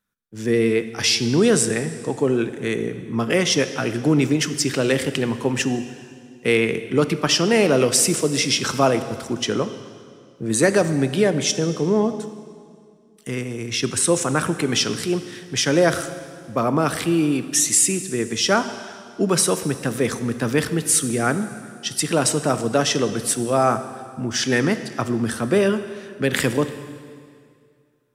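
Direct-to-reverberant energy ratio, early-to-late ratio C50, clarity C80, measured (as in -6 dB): 10.5 dB, 11.5 dB, 12.5 dB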